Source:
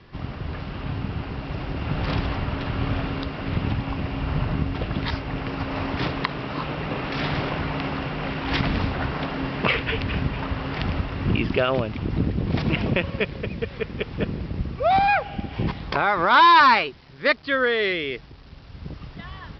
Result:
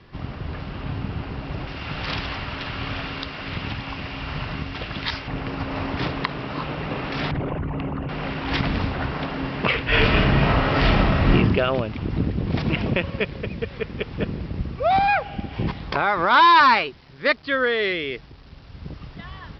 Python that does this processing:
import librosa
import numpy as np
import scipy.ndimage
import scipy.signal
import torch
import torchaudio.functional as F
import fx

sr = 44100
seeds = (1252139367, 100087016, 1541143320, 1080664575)

y = fx.tilt_shelf(x, sr, db=-6.5, hz=1100.0, at=(1.67, 5.28))
y = fx.envelope_sharpen(y, sr, power=2.0, at=(7.31, 8.09))
y = fx.reverb_throw(y, sr, start_s=9.87, length_s=1.46, rt60_s=0.83, drr_db=-10.0)